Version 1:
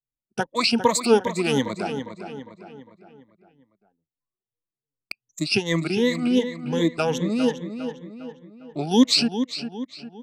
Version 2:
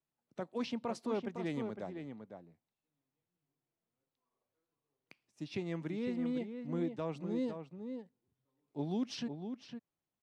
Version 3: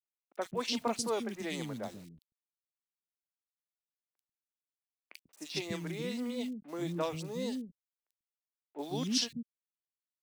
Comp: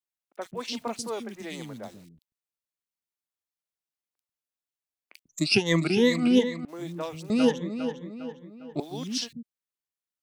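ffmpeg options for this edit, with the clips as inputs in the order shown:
-filter_complex "[0:a]asplit=2[a][b];[2:a]asplit=3[c][d][e];[c]atrim=end=5.292[f];[a]atrim=start=5.288:end=6.652[g];[d]atrim=start=6.648:end=7.302[h];[b]atrim=start=7.298:end=8.802[i];[e]atrim=start=8.798[j];[f][g]acrossfade=d=0.004:c1=hsin:c2=hsin[k];[k][h]acrossfade=d=0.004:c1=hsin:c2=hsin[l];[l][i]acrossfade=d=0.004:c1=hsin:c2=hsin[m];[m][j]acrossfade=d=0.004:c1=hsin:c2=hsin"

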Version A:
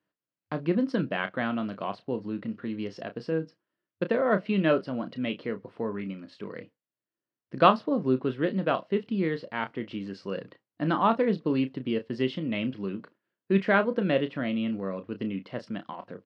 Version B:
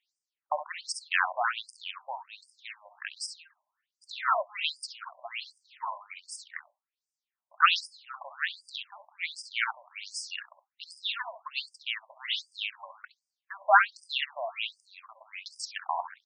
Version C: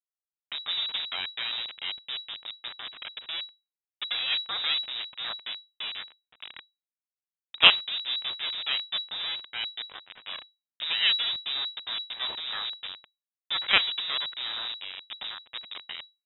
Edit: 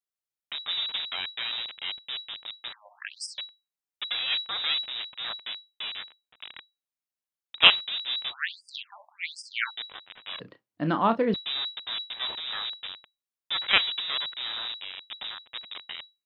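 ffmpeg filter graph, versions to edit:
-filter_complex "[1:a]asplit=2[a][b];[2:a]asplit=4[c][d][e][f];[c]atrim=end=2.732[g];[a]atrim=start=2.728:end=3.382[h];[d]atrim=start=3.378:end=8.34[i];[b]atrim=start=8.28:end=9.71[j];[e]atrim=start=9.65:end=10.402[k];[0:a]atrim=start=10.398:end=11.342[l];[f]atrim=start=11.338[m];[g][h]acrossfade=d=0.004:c1=hsin:c2=hsin[n];[n][i]acrossfade=d=0.004:c1=hsin:c2=hsin[o];[o][j]acrossfade=d=0.06:c1=tri:c2=tri[p];[p][k]acrossfade=d=0.06:c1=tri:c2=tri[q];[q][l]acrossfade=d=0.004:c1=hsin:c2=hsin[r];[r][m]acrossfade=d=0.004:c1=hsin:c2=hsin"

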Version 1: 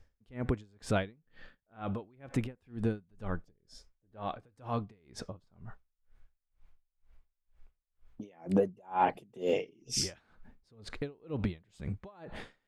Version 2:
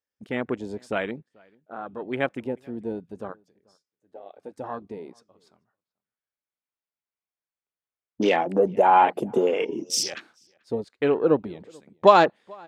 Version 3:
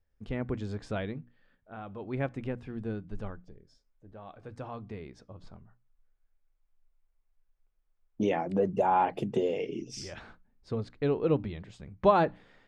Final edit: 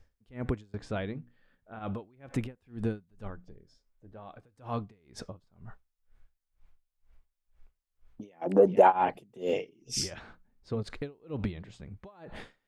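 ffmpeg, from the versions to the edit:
-filter_complex "[2:a]asplit=4[a][b][c][d];[0:a]asplit=6[e][f][g][h][i][j];[e]atrim=end=0.742[k];[a]atrim=start=0.738:end=1.792[l];[f]atrim=start=1.788:end=3.262[m];[b]atrim=start=3.258:end=4.372[n];[g]atrim=start=4.368:end=8.47[o];[1:a]atrim=start=8.41:end=8.93[p];[h]atrim=start=8.87:end=10.112[q];[c]atrim=start=10.108:end=10.832[r];[i]atrim=start=10.828:end=11.59[s];[d]atrim=start=11.49:end=12[t];[j]atrim=start=11.9[u];[k][l]acrossfade=d=0.004:c1=hsin:c2=hsin[v];[v][m]acrossfade=d=0.004:c1=hsin:c2=hsin[w];[w][n]acrossfade=d=0.004:c1=hsin:c2=hsin[x];[x][o]acrossfade=d=0.004:c1=hsin:c2=hsin[y];[y][p]acrossfade=d=0.06:c1=tri:c2=tri[z];[z][q]acrossfade=d=0.06:c1=tri:c2=tri[aa];[aa][r]acrossfade=d=0.004:c1=hsin:c2=hsin[ab];[ab][s]acrossfade=d=0.004:c1=hsin:c2=hsin[ac];[ac][t]acrossfade=d=0.1:c1=tri:c2=tri[ad];[ad][u]acrossfade=d=0.1:c1=tri:c2=tri"

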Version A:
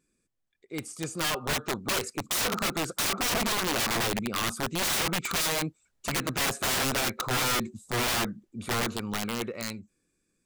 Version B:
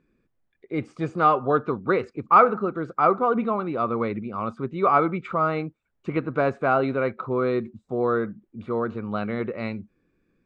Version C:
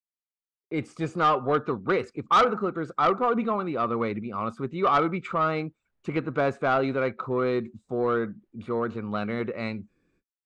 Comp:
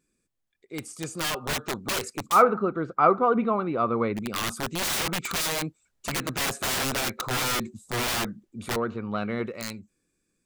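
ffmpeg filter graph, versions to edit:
-filter_complex "[0:a]asplit=3[a][b][c];[a]atrim=end=2.43[d];[1:a]atrim=start=2.27:end=4.29[e];[b]atrim=start=4.13:end=8.762[f];[2:a]atrim=start=8.758:end=9.462[g];[c]atrim=start=9.458[h];[d][e]acrossfade=d=0.16:c1=tri:c2=tri[i];[i][f]acrossfade=d=0.16:c1=tri:c2=tri[j];[j][g]acrossfade=d=0.004:c1=hsin:c2=hsin[k];[k][h]acrossfade=d=0.004:c1=hsin:c2=hsin"

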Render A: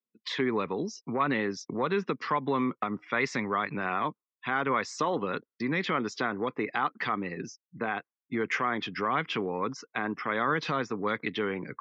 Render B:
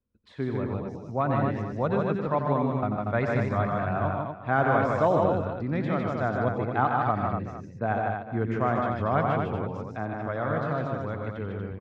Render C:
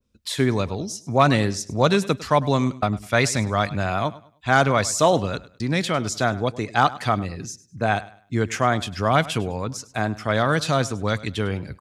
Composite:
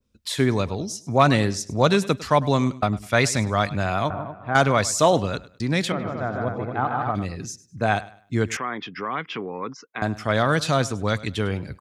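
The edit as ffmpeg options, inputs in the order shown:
-filter_complex "[1:a]asplit=2[a][b];[2:a]asplit=4[c][d][e][f];[c]atrim=end=4.102[g];[a]atrim=start=4.098:end=4.552[h];[d]atrim=start=4.548:end=5.922[i];[b]atrim=start=5.918:end=7.152[j];[e]atrim=start=7.148:end=8.572[k];[0:a]atrim=start=8.568:end=10.022[l];[f]atrim=start=10.018[m];[g][h]acrossfade=d=0.004:c1=hsin:c2=hsin[n];[n][i]acrossfade=d=0.004:c1=hsin:c2=hsin[o];[o][j]acrossfade=d=0.004:c1=hsin:c2=hsin[p];[p][k]acrossfade=d=0.004:c1=hsin:c2=hsin[q];[q][l]acrossfade=d=0.004:c1=hsin:c2=hsin[r];[r][m]acrossfade=d=0.004:c1=hsin:c2=hsin"

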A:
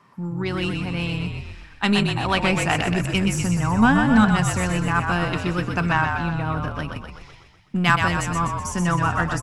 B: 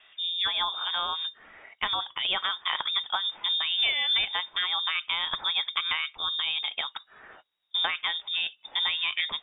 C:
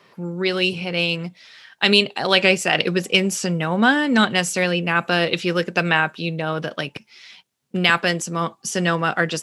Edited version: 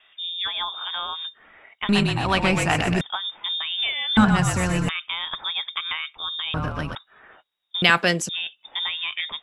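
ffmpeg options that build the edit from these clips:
-filter_complex "[0:a]asplit=3[a][b][c];[1:a]asplit=5[d][e][f][g][h];[d]atrim=end=1.892[i];[a]atrim=start=1.888:end=3.012[j];[e]atrim=start=3.008:end=4.172[k];[b]atrim=start=4.168:end=4.892[l];[f]atrim=start=4.888:end=6.542[m];[c]atrim=start=6.538:end=6.952[n];[g]atrim=start=6.948:end=7.822[o];[2:a]atrim=start=7.818:end=8.292[p];[h]atrim=start=8.288[q];[i][j]acrossfade=d=0.004:c1=hsin:c2=hsin[r];[r][k]acrossfade=d=0.004:c1=hsin:c2=hsin[s];[s][l]acrossfade=d=0.004:c1=hsin:c2=hsin[t];[t][m]acrossfade=d=0.004:c1=hsin:c2=hsin[u];[u][n]acrossfade=d=0.004:c1=hsin:c2=hsin[v];[v][o]acrossfade=d=0.004:c1=hsin:c2=hsin[w];[w][p]acrossfade=d=0.004:c1=hsin:c2=hsin[x];[x][q]acrossfade=d=0.004:c1=hsin:c2=hsin"

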